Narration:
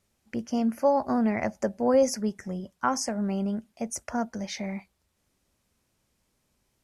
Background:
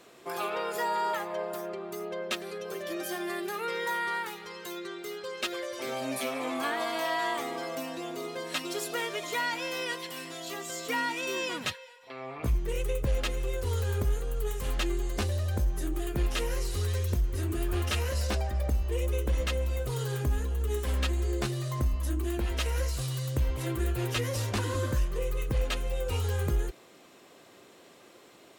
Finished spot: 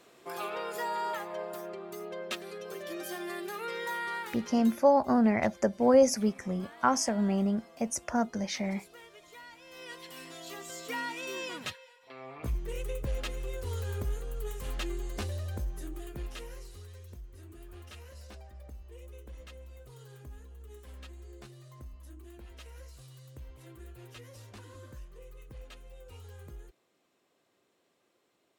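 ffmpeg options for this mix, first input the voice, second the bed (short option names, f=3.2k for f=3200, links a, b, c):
-filter_complex "[0:a]adelay=4000,volume=0.5dB[a];[1:a]volume=10dB,afade=t=out:st=4.59:d=0.25:silence=0.16788,afade=t=in:st=9.65:d=0.61:silence=0.199526,afade=t=out:st=15.26:d=1.62:silence=0.211349[b];[a][b]amix=inputs=2:normalize=0"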